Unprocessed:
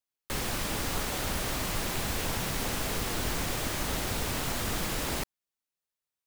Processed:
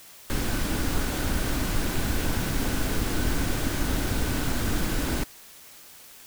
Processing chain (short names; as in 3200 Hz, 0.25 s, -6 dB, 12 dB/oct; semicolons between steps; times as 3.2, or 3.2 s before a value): low shelf 140 Hz +9.5 dB; small resonant body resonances 280/1500 Hz, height 8 dB, ringing for 25 ms; requantised 8-bit, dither triangular